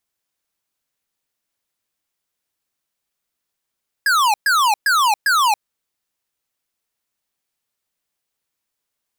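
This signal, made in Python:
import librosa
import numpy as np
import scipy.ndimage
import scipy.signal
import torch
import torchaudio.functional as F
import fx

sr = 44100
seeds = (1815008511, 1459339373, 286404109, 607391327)

y = fx.laser_zaps(sr, level_db=-15, start_hz=1700.0, end_hz=800.0, length_s=0.28, wave='square', shots=4, gap_s=0.12)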